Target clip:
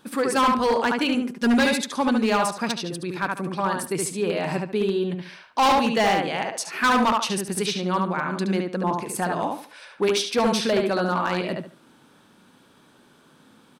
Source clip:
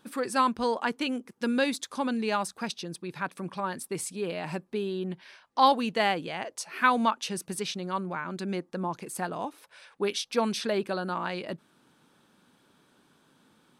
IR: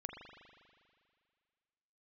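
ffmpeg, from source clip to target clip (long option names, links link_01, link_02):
-filter_complex "[0:a]asettb=1/sr,asplit=3[link_01][link_02][link_03];[link_01]atrim=end=1.144[link_04];[link_02]atrim=start=1.14:end=1.74,asetpts=PTS-STARTPTS,afade=type=in:duration=0.004:curve=qsin,afade=type=out:start_time=0.596:duration=0.004:curve=qsin,aecho=1:1:4.9:0.73,atrim=end_sample=26460[link_05];[link_03]atrim=start=1.736[link_06];[link_04][link_05]acrossfade=duration=0.004:curve1=hsin:curve2=qsin[link_07];[link_07][link_06]acrossfade=duration=0.004:curve1=qsin:curve2=hsin,asplit=2[link_08][link_09];[link_09]adelay=72,lowpass=frequency=3400:poles=1,volume=-3dB,asplit=2[link_10][link_11];[link_11]adelay=72,lowpass=frequency=3400:poles=1,volume=0.28,asplit=2[link_12][link_13];[link_13]adelay=72,lowpass=frequency=3400:poles=1,volume=0.28,asplit=2[link_14][link_15];[link_15]adelay=72,lowpass=frequency=3400:poles=1,volume=0.28[link_16];[link_08][link_10][link_12][link_14][link_16]amix=inputs=5:normalize=0,volume=22dB,asoftclip=hard,volume=-22dB,volume=6.5dB"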